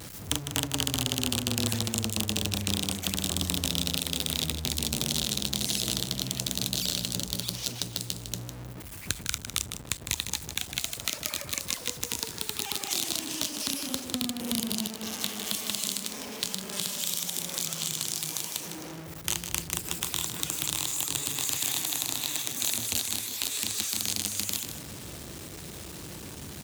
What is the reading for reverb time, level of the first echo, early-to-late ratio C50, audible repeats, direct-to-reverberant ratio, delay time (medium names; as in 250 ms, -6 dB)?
no reverb, -9.0 dB, no reverb, 2, no reverb, 155 ms